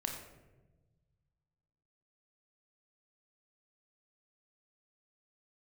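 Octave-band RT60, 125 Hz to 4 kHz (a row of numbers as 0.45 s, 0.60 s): 2.4 s, 1.7 s, 1.4 s, 0.95 s, 0.85 s, 0.60 s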